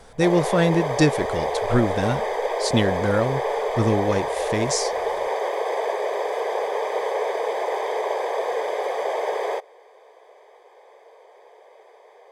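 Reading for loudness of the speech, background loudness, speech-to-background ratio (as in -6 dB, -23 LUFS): -23.5 LUFS, -25.5 LUFS, 2.0 dB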